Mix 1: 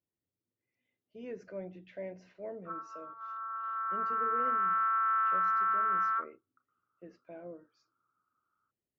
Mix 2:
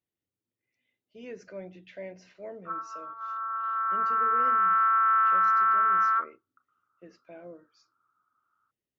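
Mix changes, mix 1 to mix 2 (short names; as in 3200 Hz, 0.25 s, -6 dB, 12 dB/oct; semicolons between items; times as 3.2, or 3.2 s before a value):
speech: add high shelf 2100 Hz +11 dB; background +6.5 dB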